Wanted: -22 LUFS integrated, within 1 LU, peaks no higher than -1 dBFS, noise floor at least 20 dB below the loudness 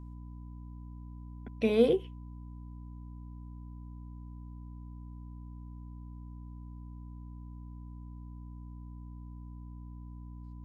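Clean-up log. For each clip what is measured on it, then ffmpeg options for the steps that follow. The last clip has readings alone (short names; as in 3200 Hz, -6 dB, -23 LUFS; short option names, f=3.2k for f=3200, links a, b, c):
hum 60 Hz; harmonics up to 300 Hz; hum level -43 dBFS; steady tone 1000 Hz; tone level -63 dBFS; loudness -39.0 LUFS; peak -12.5 dBFS; loudness target -22.0 LUFS
-> -af "bandreject=f=60:t=h:w=4,bandreject=f=120:t=h:w=4,bandreject=f=180:t=h:w=4,bandreject=f=240:t=h:w=4,bandreject=f=300:t=h:w=4"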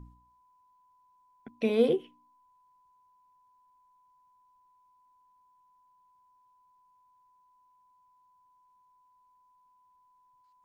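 hum none; steady tone 1000 Hz; tone level -63 dBFS
-> -af "bandreject=f=1k:w=30"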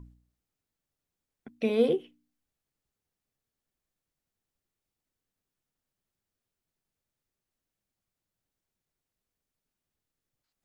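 steady tone none; loudness -28.0 LUFS; peak -13.0 dBFS; loudness target -22.0 LUFS
-> -af "volume=6dB"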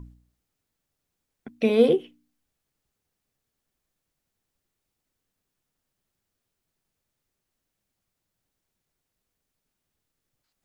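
loudness -22.0 LUFS; peak -7.0 dBFS; noise floor -83 dBFS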